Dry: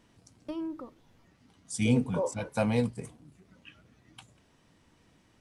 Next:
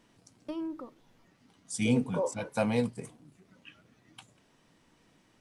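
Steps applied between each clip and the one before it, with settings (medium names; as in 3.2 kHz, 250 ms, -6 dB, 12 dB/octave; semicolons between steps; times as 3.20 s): peaking EQ 66 Hz -12 dB 1.2 oct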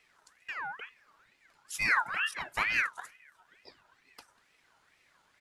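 comb 3.9 ms, depth 32%; ring modulator with a swept carrier 1.7 kHz, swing 35%, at 2.2 Hz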